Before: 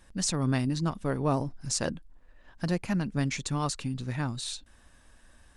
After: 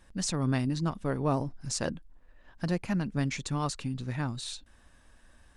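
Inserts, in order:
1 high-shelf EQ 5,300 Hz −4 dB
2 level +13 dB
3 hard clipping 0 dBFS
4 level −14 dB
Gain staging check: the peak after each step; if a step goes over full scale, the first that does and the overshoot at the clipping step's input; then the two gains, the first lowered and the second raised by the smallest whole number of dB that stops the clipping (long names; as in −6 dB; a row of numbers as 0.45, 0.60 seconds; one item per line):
−15.0, −2.0, −2.0, −16.0 dBFS
no step passes full scale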